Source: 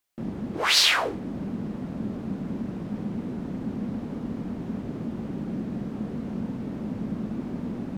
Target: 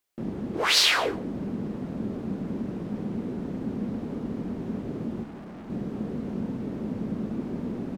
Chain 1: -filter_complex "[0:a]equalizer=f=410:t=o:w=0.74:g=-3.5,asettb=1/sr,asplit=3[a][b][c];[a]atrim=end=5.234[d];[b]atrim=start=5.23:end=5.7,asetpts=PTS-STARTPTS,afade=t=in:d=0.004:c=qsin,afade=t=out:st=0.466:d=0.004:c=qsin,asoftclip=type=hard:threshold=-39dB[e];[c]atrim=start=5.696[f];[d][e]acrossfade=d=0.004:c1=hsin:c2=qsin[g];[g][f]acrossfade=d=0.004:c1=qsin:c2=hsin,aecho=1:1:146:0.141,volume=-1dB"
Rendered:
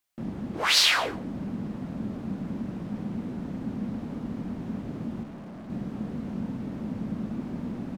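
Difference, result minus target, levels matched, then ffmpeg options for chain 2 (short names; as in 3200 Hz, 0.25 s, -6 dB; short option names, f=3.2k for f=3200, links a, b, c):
500 Hz band -4.5 dB
-filter_complex "[0:a]equalizer=f=410:t=o:w=0.74:g=4.5,asettb=1/sr,asplit=3[a][b][c];[a]atrim=end=5.234[d];[b]atrim=start=5.23:end=5.7,asetpts=PTS-STARTPTS,afade=t=in:d=0.004:c=qsin,afade=t=out:st=0.466:d=0.004:c=qsin,asoftclip=type=hard:threshold=-39dB[e];[c]atrim=start=5.696[f];[d][e]acrossfade=d=0.004:c1=hsin:c2=qsin[g];[g][f]acrossfade=d=0.004:c1=qsin:c2=hsin,aecho=1:1:146:0.141,volume=-1dB"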